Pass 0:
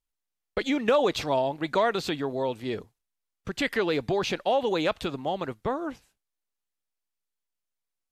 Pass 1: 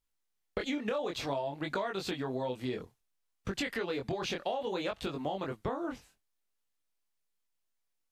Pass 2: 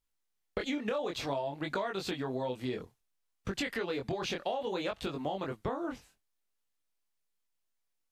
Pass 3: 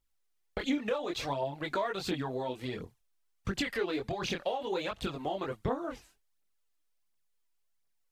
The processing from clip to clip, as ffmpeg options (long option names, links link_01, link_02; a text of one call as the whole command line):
ffmpeg -i in.wav -af "flanger=delay=20:depth=4.1:speed=0.58,acompressor=threshold=-37dB:ratio=6,volume=5dB" out.wav
ffmpeg -i in.wav -af anull out.wav
ffmpeg -i in.wav -af "aphaser=in_gain=1:out_gain=1:delay=3.3:decay=0.5:speed=1.4:type=triangular" out.wav